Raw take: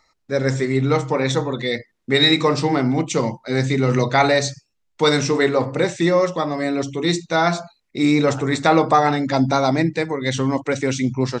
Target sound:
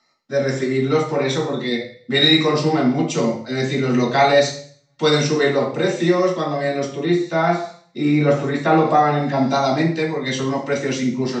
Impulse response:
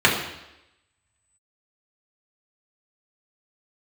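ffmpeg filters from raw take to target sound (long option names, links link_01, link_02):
-filter_complex "[1:a]atrim=start_sample=2205,asetrate=74970,aresample=44100[link_01];[0:a][link_01]afir=irnorm=-1:irlink=0,asettb=1/sr,asplit=3[link_02][link_03][link_04];[link_02]atrim=end=6.954[link_05];[link_03]atrim=start=6.95:end=9.48,asetpts=PTS-STARTPTS,afade=type=in:duration=0.004:curve=qsin,afade=type=out:start_time=2.526:duration=0.004:curve=qsin,acrossover=split=2600[link_06][link_07];[link_07]acompressor=threshold=-25dB:ratio=4:attack=1:release=60[link_08];[link_06][link_08]amix=inputs=2:normalize=0[link_09];[link_04]atrim=start=9.476[link_10];[link_05][link_09]acrossfade=duration=0.004:curve1=hsin:curve2=qsin[link_11];[link_11][link_10]acrossfade=duration=0.004:curve1=qsin:curve2=hsin,volume=-16.5dB"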